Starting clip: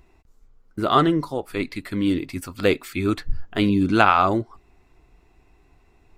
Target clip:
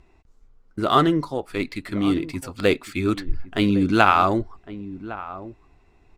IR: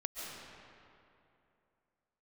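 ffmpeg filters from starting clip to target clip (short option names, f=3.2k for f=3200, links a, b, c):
-filter_complex "[0:a]adynamicsmooth=sensitivity=7:basefreq=6.6k,highshelf=f=7.9k:g=8,asplit=2[a][b];[b]adelay=1108,volume=-15dB,highshelf=f=4k:g=-24.9[c];[a][c]amix=inputs=2:normalize=0"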